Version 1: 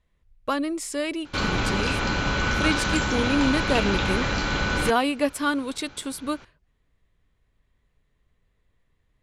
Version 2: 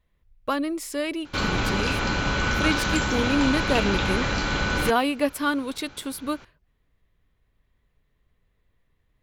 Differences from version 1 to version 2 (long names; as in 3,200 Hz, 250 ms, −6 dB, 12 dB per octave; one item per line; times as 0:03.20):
speech: add parametric band 8,300 Hz −6 dB 0.79 octaves
master: remove low-pass filter 9,700 Hz 12 dB per octave